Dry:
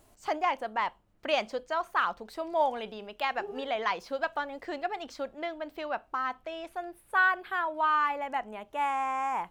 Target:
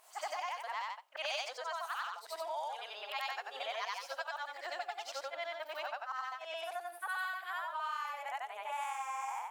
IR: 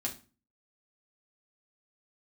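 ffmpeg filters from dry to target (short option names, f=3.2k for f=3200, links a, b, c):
-filter_complex "[0:a]afftfilt=real='re':imag='-im':win_size=8192:overlap=0.75,highpass=f=690:w=0.5412,highpass=f=690:w=1.3066,acrossover=split=4500[a][b];[a]acompressor=threshold=-47dB:ratio=6[c];[c][b]amix=inputs=2:normalize=0,volume=9dB"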